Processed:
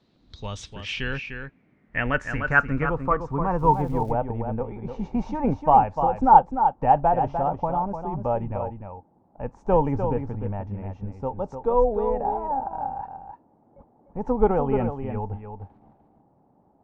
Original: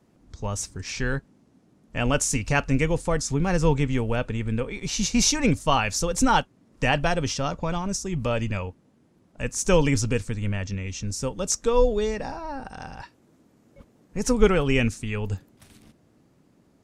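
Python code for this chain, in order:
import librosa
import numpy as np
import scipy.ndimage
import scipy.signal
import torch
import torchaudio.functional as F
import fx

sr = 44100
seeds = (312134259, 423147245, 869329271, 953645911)

y = x + 10.0 ** (-7.5 / 20.0) * np.pad(x, (int(300 * sr / 1000.0), 0))[:len(x)]
y = fx.filter_sweep_lowpass(y, sr, from_hz=4000.0, to_hz=830.0, start_s=0.29, end_s=3.92, q=6.9)
y = fx.dmg_crackle(y, sr, seeds[0], per_s=530.0, level_db=-41.0, at=(3.58, 4.11), fade=0.02)
y = y * librosa.db_to_amplitude(-4.0)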